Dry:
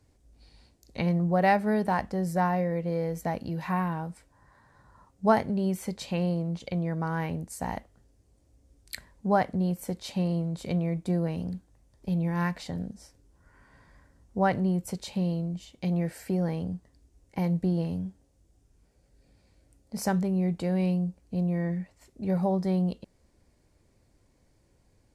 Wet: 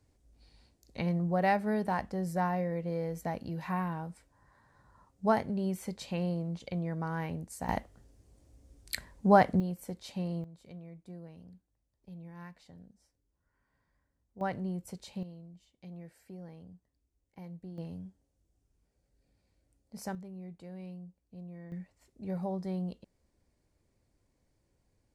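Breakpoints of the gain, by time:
-5 dB
from 7.69 s +2.5 dB
from 9.6 s -7.5 dB
from 10.44 s -19.5 dB
from 14.41 s -9.5 dB
from 15.23 s -19 dB
from 17.78 s -11 dB
from 20.15 s -18.5 dB
from 21.72 s -9 dB

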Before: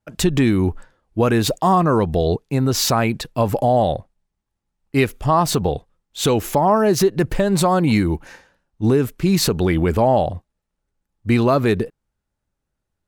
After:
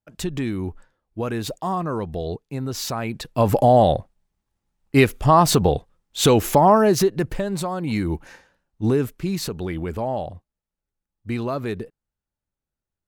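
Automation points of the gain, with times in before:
3.01 s -9.5 dB
3.5 s +2 dB
6.66 s +2 dB
7.76 s -11 dB
8.13 s -3.5 dB
9.01 s -3.5 dB
9.41 s -10 dB

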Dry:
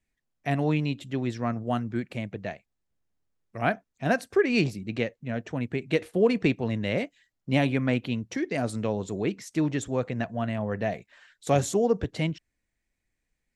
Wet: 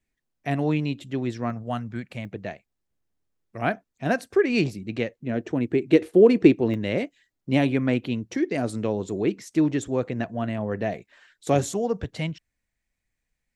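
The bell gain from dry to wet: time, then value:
bell 340 Hz 0.83 oct
+3 dB
from 1.5 s -7 dB
from 2.25 s +3 dB
from 5.2 s +13 dB
from 6.74 s +6 dB
from 11.72 s -5.5 dB

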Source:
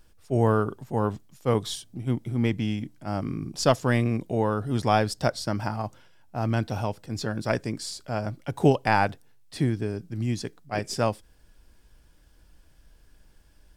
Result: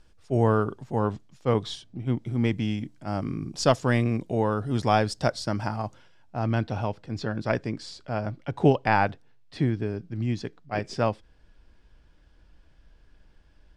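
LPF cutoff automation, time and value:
1.04 s 6800 Hz
1.99 s 3800 Hz
2.39 s 8200 Hz
5.86 s 8200 Hz
6.7 s 4000 Hz

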